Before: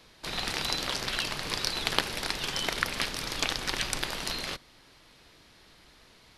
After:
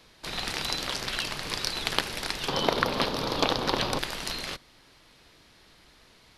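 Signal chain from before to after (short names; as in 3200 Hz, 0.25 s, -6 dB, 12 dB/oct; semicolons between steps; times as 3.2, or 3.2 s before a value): 2.48–3.99 graphic EQ 125/250/500/1000/2000/4000/8000 Hz +6/+7/+10/+9/-5/+6/-10 dB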